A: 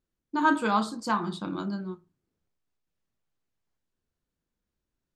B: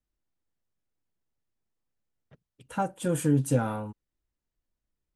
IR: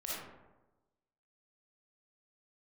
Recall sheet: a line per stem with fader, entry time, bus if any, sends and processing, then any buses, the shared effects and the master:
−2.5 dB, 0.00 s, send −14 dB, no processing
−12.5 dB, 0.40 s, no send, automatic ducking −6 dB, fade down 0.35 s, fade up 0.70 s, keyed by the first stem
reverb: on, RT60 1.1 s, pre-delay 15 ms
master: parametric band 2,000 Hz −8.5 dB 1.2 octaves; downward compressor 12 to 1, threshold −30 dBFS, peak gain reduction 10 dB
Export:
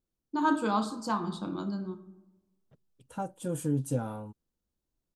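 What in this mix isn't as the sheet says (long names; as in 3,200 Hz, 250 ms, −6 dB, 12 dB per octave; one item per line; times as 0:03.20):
stem B −12.5 dB → −5.5 dB
master: missing downward compressor 12 to 1, threshold −30 dBFS, peak gain reduction 10 dB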